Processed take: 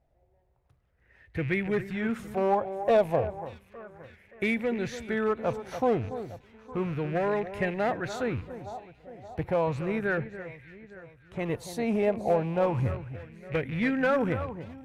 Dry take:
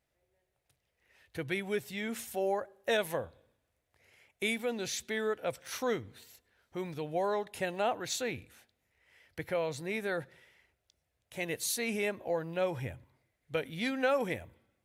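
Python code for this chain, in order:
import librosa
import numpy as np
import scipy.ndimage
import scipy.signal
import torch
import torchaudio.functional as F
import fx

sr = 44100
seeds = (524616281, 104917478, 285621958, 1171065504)

p1 = fx.rattle_buzz(x, sr, strikes_db=-47.0, level_db=-35.0)
p2 = fx.env_lowpass_down(p1, sr, base_hz=1300.0, full_db=-40.0, at=(10.17, 11.39))
p3 = fx.tilt_eq(p2, sr, slope=-4.0)
p4 = fx.clip_asym(p3, sr, top_db=-24.0, bottom_db=-19.5)
p5 = p4 + fx.echo_alternate(p4, sr, ms=287, hz=1900.0, feedback_pct=67, wet_db=-12.0, dry=0)
y = fx.bell_lfo(p5, sr, hz=0.33, low_hz=710.0, high_hz=2000.0, db=12)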